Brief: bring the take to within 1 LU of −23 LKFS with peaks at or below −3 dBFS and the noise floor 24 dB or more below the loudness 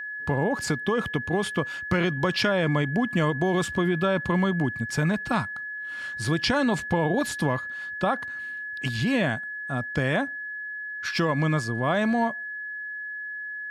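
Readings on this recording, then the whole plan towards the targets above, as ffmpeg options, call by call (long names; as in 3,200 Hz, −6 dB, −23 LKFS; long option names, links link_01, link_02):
interfering tone 1,700 Hz; level of the tone −32 dBFS; integrated loudness −26.5 LKFS; sample peak −11.5 dBFS; target loudness −23.0 LKFS
→ -af "bandreject=frequency=1700:width=30"
-af "volume=3.5dB"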